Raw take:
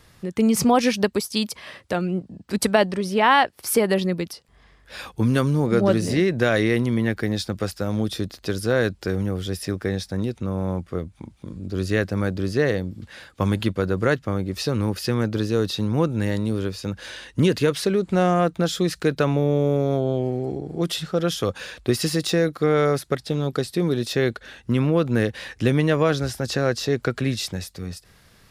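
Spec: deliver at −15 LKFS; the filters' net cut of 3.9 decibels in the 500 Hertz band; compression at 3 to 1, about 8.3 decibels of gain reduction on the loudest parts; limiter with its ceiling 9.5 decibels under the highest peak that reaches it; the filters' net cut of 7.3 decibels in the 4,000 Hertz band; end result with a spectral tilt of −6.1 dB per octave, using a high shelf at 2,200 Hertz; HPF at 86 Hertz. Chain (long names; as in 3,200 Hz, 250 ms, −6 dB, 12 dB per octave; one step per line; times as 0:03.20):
high-pass filter 86 Hz
parametric band 500 Hz −4.5 dB
high-shelf EQ 2,200 Hz −5.5 dB
parametric band 4,000 Hz −4 dB
downward compressor 3 to 1, threshold −27 dBFS
level +19 dB
brickwall limiter −4.5 dBFS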